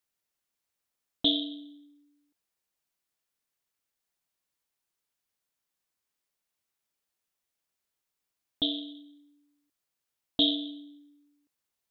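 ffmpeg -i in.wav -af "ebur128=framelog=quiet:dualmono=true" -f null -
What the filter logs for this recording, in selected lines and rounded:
Integrated loudness:
  I:         -26.0 LUFS
  Threshold: -38.9 LUFS
Loudness range:
  LRA:         6.1 LU
  Threshold: -53.2 LUFS
  LRA low:   -36.4 LUFS
  LRA high:  -30.3 LUFS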